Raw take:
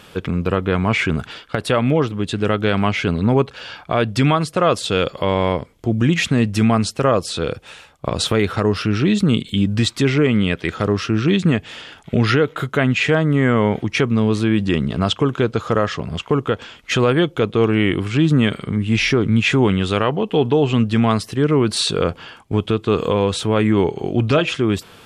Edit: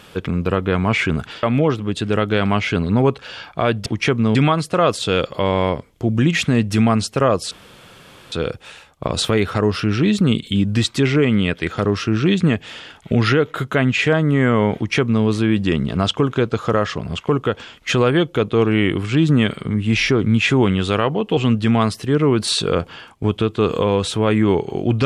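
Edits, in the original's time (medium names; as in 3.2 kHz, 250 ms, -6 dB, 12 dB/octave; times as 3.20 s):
1.43–1.75 s: delete
7.34 s: insert room tone 0.81 s
13.78–14.27 s: copy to 4.18 s
20.39–20.66 s: delete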